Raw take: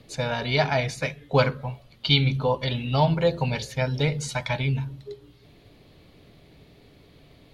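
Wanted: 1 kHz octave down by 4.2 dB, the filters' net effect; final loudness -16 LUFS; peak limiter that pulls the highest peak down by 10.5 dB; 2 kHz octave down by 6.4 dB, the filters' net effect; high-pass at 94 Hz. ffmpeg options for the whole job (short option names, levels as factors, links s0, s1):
-af "highpass=94,equalizer=f=1000:t=o:g=-4,equalizer=f=2000:t=o:g=-7,volume=4.73,alimiter=limit=0.562:level=0:latency=1"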